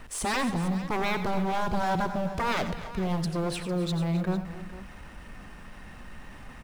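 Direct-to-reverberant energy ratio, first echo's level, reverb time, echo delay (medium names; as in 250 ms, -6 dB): no reverb, -12.0 dB, no reverb, 89 ms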